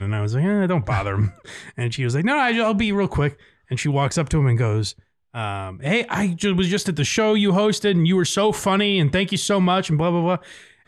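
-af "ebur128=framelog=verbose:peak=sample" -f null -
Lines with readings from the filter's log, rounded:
Integrated loudness:
  I:         -20.6 LUFS
  Threshold: -30.8 LUFS
Loudness range:
  LRA:         3.7 LU
  Threshold: -40.7 LUFS
  LRA low:   -22.6 LUFS
  LRA high:  -18.9 LUFS
Sample peak:
  Peak:       -7.9 dBFS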